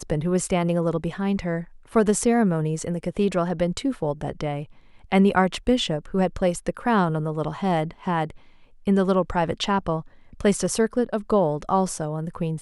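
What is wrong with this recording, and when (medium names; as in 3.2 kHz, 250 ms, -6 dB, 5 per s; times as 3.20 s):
5.54 s: dropout 2.4 ms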